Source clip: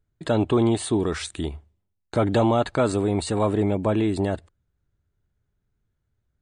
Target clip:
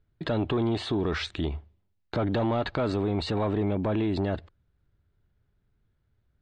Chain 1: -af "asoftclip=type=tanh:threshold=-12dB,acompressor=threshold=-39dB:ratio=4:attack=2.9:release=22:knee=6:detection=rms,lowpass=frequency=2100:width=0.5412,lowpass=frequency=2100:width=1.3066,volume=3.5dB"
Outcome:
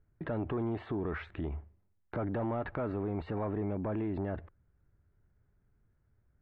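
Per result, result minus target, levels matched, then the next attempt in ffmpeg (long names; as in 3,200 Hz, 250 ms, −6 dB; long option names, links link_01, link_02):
4,000 Hz band −15.5 dB; downward compressor: peak gain reduction +7.5 dB
-af "asoftclip=type=tanh:threshold=-12dB,acompressor=threshold=-39dB:ratio=4:attack=2.9:release=22:knee=6:detection=rms,lowpass=frequency=4600:width=0.5412,lowpass=frequency=4600:width=1.3066,volume=3.5dB"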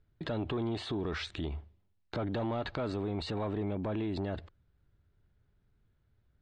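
downward compressor: peak gain reduction +7.5 dB
-af "asoftclip=type=tanh:threshold=-12dB,acompressor=threshold=-29dB:ratio=4:attack=2.9:release=22:knee=6:detection=rms,lowpass=frequency=4600:width=0.5412,lowpass=frequency=4600:width=1.3066,volume=3.5dB"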